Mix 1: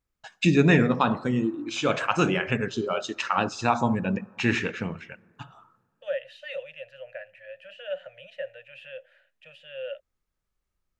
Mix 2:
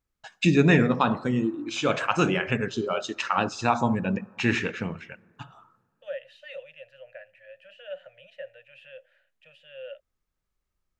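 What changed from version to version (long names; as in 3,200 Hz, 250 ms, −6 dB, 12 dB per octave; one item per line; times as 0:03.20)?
second voice −5.0 dB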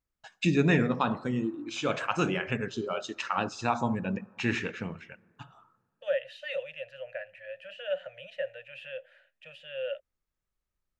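first voice −5.0 dB
second voice +6.0 dB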